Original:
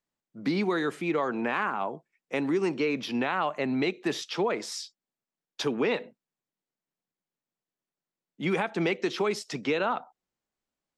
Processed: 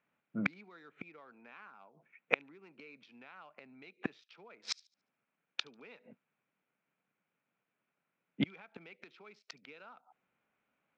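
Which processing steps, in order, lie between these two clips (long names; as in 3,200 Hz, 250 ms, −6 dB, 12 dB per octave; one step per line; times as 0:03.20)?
adaptive Wiener filter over 9 samples
dynamic equaliser 4,100 Hz, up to +4 dB, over −53 dBFS, Q 2.5
gate with flip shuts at −26 dBFS, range −37 dB
loudspeaker in its box 120–5,900 Hz, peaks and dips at 350 Hz −5 dB, 1,400 Hz +7 dB, 2,400 Hz +10 dB
delay with a high-pass on its return 72 ms, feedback 34%, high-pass 4,200 Hz, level −23 dB
level +8.5 dB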